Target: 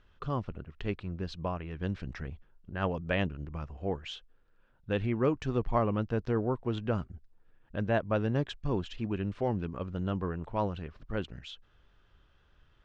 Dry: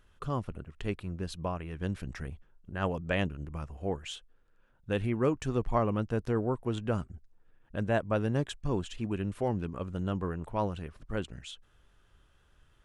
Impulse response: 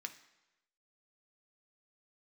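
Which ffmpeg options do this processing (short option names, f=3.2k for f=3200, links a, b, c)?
-af "lowpass=f=5.2k:w=0.5412,lowpass=f=5.2k:w=1.3066"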